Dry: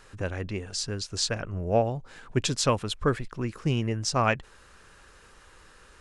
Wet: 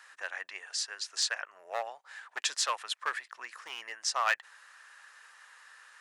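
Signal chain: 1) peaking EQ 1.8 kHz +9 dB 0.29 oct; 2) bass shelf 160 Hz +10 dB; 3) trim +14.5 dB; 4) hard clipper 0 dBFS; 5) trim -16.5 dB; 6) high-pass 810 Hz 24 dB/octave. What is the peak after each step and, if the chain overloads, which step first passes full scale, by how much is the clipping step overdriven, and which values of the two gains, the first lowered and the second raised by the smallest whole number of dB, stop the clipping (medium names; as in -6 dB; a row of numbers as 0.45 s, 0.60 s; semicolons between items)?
-7.0 dBFS, -6.5 dBFS, +8.0 dBFS, 0.0 dBFS, -16.5 dBFS, -13.0 dBFS; step 3, 8.0 dB; step 3 +6.5 dB, step 5 -8.5 dB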